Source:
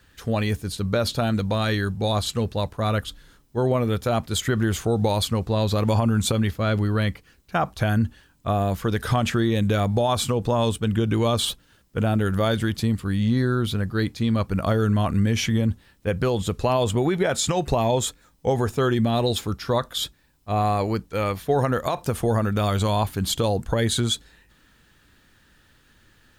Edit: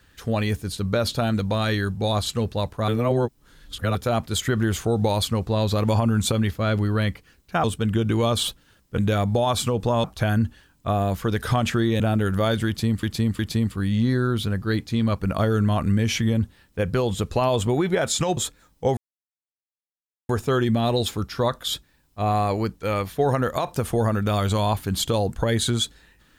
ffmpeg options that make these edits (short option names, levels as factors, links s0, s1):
-filter_complex "[0:a]asplit=11[s0][s1][s2][s3][s4][s5][s6][s7][s8][s9][s10];[s0]atrim=end=2.882[s11];[s1]atrim=start=2.878:end=3.952,asetpts=PTS-STARTPTS,areverse[s12];[s2]atrim=start=3.948:end=7.642[s13];[s3]atrim=start=10.658:end=12.002[s14];[s4]atrim=start=9.598:end=10.662[s15];[s5]atrim=start=7.638:end=9.602[s16];[s6]atrim=start=11.998:end=13.032[s17];[s7]atrim=start=12.668:end=13.032[s18];[s8]atrim=start=12.668:end=17.652[s19];[s9]atrim=start=17.988:end=18.59,asetpts=PTS-STARTPTS,afade=t=out:st=0.598:d=0.004:c=hsin,apad=pad_dur=1.32[s20];[s10]atrim=start=18.59,asetpts=PTS-STARTPTS,afade=t=in:d=0.004:c=hsin[s21];[s11][s12]acrossfade=d=0.004:c1=hsin:c2=hsin[s22];[s22][s13]acrossfade=d=0.004:c1=hsin:c2=hsin[s23];[s23][s14]acrossfade=d=0.004:c1=hsin:c2=hsin[s24];[s24][s15]acrossfade=d=0.004:c1=hsin:c2=hsin[s25];[s25][s16]acrossfade=d=0.004:c1=hsin:c2=hsin[s26];[s26][s17]acrossfade=d=0.004:c1=hsin:c2=hsin[s27];[s27][s18]acrossfade=d=0.004:c1=hsin:c2=hsin[s28];[s28][s19]acrossfade=d=0.004:c1=hsin:c2=hsin[s29];[s20][s21]concat=n=2:v=0:a=1[s30];[s29][s30]acrossfade=d=0.004:c1=hsin:c2=hsin"